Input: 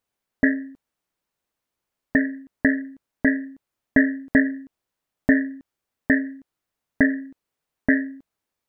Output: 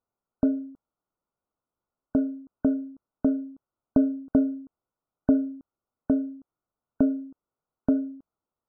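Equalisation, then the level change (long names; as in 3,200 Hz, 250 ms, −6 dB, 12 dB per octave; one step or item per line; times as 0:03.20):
linear-phase brick-wall low-pass 1,500 Hz
−2.5 dB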